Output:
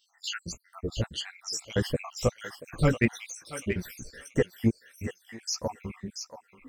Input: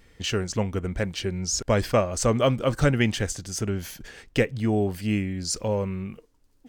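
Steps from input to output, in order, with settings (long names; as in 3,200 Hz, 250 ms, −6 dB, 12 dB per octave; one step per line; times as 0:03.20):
time-frequency cells dropped at random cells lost 78%
multi-voice chorus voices 2, 1.5 Hz, delay 15 ms, depth 3 ms
in parallel at −6 dB: soft clipping −21 dBFS, distortion −12 dB
0:04.38–0:05.32: on the sum: upward compression, threshold −36 dBFS
feedback echo with a high-pass in the loop 682 ms, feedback 18%, high-pass 1,100 Hz, level −7 dB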